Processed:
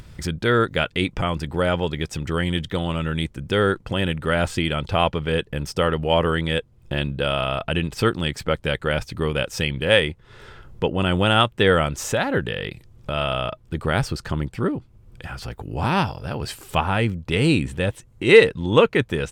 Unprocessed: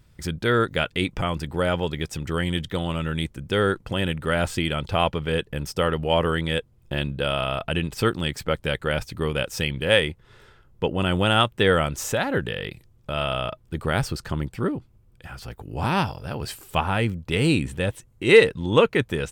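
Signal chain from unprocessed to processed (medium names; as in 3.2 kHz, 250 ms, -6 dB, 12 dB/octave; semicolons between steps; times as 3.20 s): treble shelf 12 kHz -10.5 dB; in parallel at -2 dB: upward compressor, threshold -24 dBFS; on the sum: trim -3 dB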